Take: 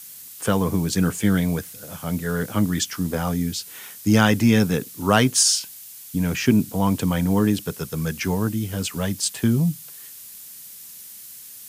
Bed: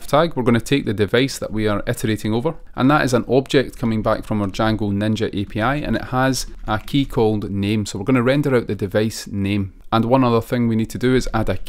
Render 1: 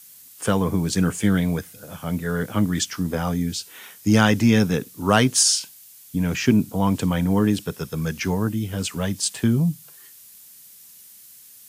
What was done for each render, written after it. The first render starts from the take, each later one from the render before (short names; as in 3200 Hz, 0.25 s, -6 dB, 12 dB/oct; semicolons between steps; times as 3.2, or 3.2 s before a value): noise print and reduce 6 dB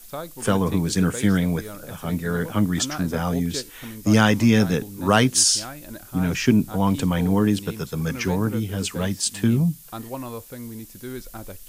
add bed -18 dB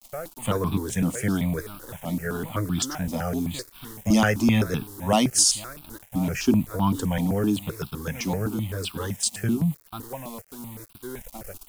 sample gate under -37.5 dBFS; step phaser 7.8 Hz 420–1900 Hz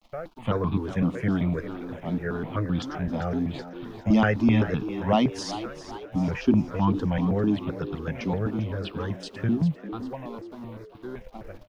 air absorption 290 m; frequency-shifting echo 0.397 s, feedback 49%, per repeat +87 Hz, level -13 dB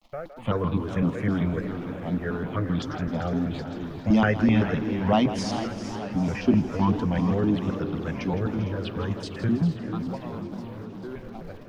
split-band echo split 300 Hz, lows 0.311 s, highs 0.162 s, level -12 dB; warbling echo 0.448 s, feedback 70%, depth 202 cents, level -13.5 dB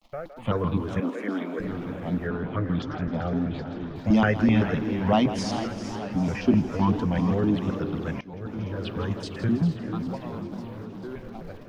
1–1.6 Chebyshev high-pass 240 Hz, order 4; 2.27–3.96 air absorption 130 m; 8.21–8.9 fade in, from -22.5 dB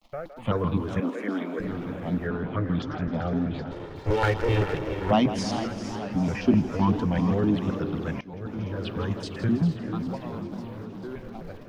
3.71–5.11 minimum comb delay 2.2 ms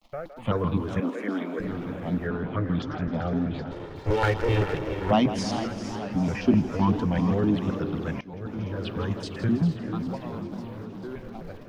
nothing audible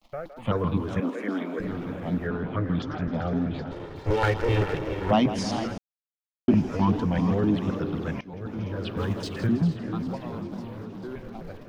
5.78–6.48 mute; 8.97–9.47 G.711 law mismatch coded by mu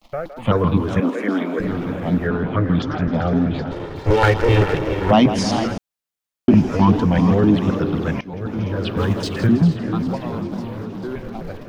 gain +8.5 dB; limiter -3 dBFS, peak gain reduction 2.5 dB